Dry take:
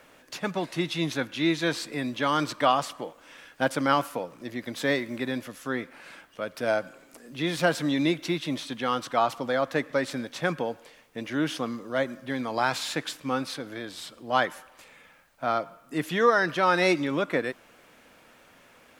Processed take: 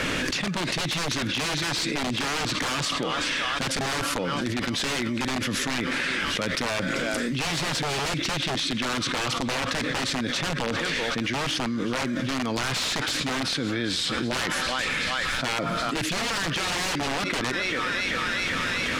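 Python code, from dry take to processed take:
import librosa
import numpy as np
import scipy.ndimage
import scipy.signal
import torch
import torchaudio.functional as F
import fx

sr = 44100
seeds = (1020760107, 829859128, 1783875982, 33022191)

y = fx.peak_eq(x, sr, hz=760.0, db=-13.0, octaves=1.8)
y = fx.echo_thinned(y, sr, ms=386, feedback_pct=78, hz=650.0, wet_db=-20.0)
y = (np.mod(10.0 ** (28.0 / 20.0) * y + 1.0, 2.0) - 1.0) / 10.0 ** (28.0 / 20.0)
y = fx.air_absorb(y, sr, metres=74.0)
y = fx.env_flatten(y, sr, amount_pct=100)
y = F.gain(torch.from_numpy(y), 5.5).numpy()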